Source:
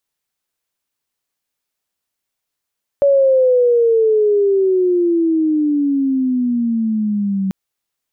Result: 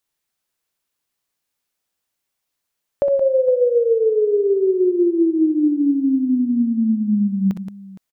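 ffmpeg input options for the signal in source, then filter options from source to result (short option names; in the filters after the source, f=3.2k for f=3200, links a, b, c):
-f lavfi -i "aevalsrc='pow(10,(-8.5-7*t/4.49)/20)*sin(2*PI*568*4.49/(-19*log(2)/12)*(exp(-19*log(2)/12*t/4.49)-1))':d=4.49:s=44100"
-af "acompressor=threshold=-16dB:ratio=6,aecho=1:1:57|63|174|464:0.141|0.355|0.316|0.126"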